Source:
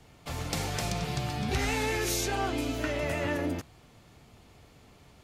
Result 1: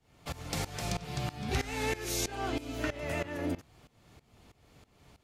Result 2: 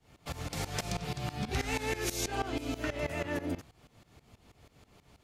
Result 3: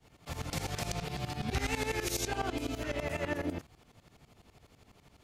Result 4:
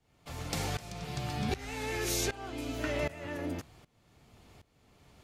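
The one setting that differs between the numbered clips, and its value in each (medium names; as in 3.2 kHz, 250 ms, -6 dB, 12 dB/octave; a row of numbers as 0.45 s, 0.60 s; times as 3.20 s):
tremolo, rate: 3.1 Hz, 6.2 Hz, 12 Hz, 1.3 Hz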